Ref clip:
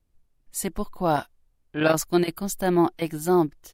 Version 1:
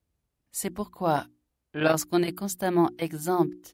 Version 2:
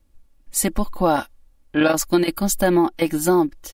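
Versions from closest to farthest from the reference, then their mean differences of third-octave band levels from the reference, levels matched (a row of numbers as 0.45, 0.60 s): 1, 2; 1.5, 3.0 dB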